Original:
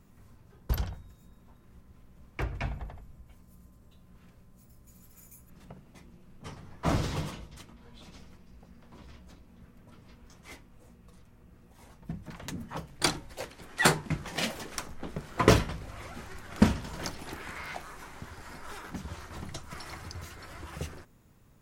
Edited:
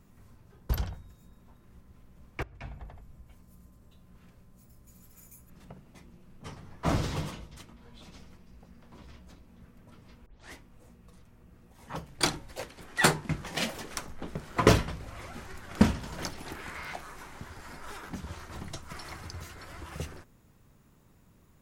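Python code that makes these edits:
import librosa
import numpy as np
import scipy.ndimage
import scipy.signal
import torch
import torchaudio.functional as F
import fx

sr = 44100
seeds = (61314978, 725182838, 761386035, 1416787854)

y = fx.edit(x, sr, fx.fade_in_from(start_s=2.43, length_s=0.73, floor_db=-21.5),
    fx.tape_start(start_s=10.26, length_s=0.27),
    fx.cut(start_s=11.88, length_s=0.81), tone=tone)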